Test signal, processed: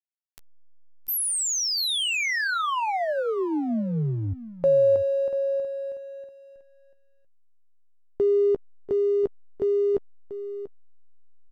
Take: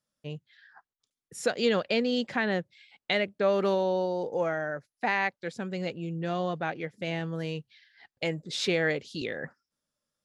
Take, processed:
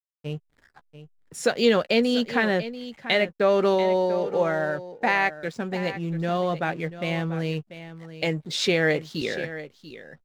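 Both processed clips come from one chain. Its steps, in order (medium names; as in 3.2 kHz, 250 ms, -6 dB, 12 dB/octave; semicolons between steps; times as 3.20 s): hysteresis with a dead band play -47.5 dBFS; doubling 13 ms -13 dB; on a send: delay 689 ms -13.5 dB; on the sum: trim +5 dB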